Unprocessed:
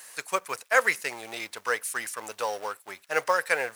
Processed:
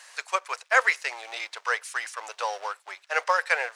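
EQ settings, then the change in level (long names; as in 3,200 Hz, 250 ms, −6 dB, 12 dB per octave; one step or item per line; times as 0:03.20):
four-pole ladder high-pass 500 Hz, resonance 20%
high-frequency loss of the air 130 metres
high-shelf EQ 4,000 Hz +10 dB
+6.0 dB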